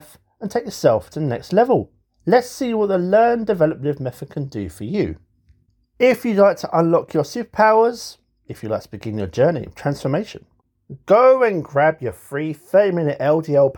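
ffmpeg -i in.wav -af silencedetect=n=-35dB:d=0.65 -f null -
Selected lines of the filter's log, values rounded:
silence_start: 5.15
silence_end: 6.00 | silence_duration: 0.85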